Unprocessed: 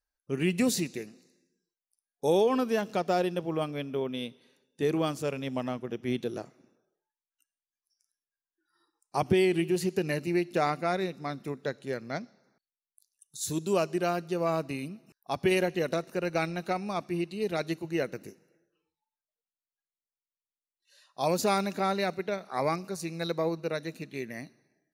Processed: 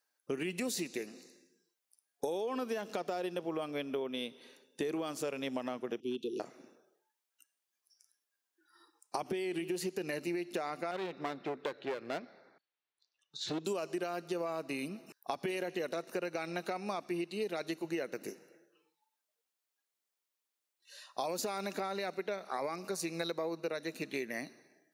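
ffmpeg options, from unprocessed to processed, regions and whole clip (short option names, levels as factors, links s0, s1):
-filter_complex "[0:a]asettb=1/sr,asplit=3[s0][s1][s2];[s0]atrim=end=6.004[s3];[s1]atrim=start=6:end=6.4,asetpts=PTS-STARTPTS,afade=t=in:d=0.004:c=qsin,afade=t=out:st=0.396:d=0.004:c=qsin,asuperstop=centerf=1100:order=20:qfactor=0.5,bass=f=250:g=-7,treble=f=4000:g=-10,asoftclip=type=hard:threshold=0.0531[s4];[s2]atrim=start=6.396[s5];[s3][s4]acrossfade=d=0.004:c1=hsin:c2=qsin[s6];[s6][s5]acrossfade=d=0.004:c1=qsin:c2=hsin,asettb=1/sr,asplit=3[s7][s8][s9];[s7]atrim=end=10.914[s10];[s8]atrim=start=10.91:end=13.65,asetpts=PTS-STARTPTS,afade=t=in:d=0.004:c=qsin,afade=t=out:st=2.736:d=0.004:c=qsin,lowpass=f=3900:w=0.5412,lowpass=f=3900:w=1.3066,equalizer=f=220:t=o:w=0.34:g=-8,aeval=exprs='clip(val(0),-1,0.0112)':c=same[s11];[s9]atrim=start=13.646[s12];[s10][s11]acrossfade=d=0.004:c1=hsin:c2=qsin[s13];[s13][s12]acrossfade=d=0.004:c1=qsin:c2=hsin,highpass=280,alimiter=limit=0.075:level=0:latency=1,acompressor=threshold=0.00794:ratio=6,volume=2.51"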